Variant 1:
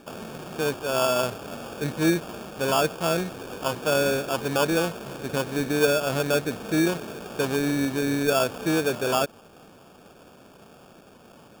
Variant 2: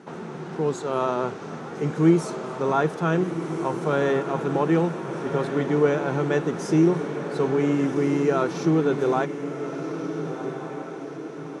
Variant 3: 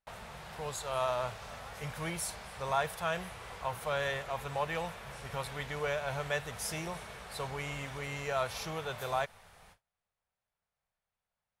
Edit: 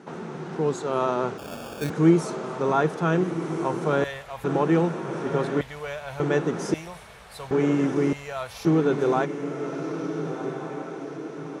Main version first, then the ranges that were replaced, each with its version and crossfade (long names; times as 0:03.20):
2
0:01.38–0:01.90: punch in from 1
0:04.04–0:04.44: punch in from 3
0:05.61–0:06.20: punch in from 3
0:06.74–0:07.51: punch in from 3
0:08.13–0:08.65: punch in from 3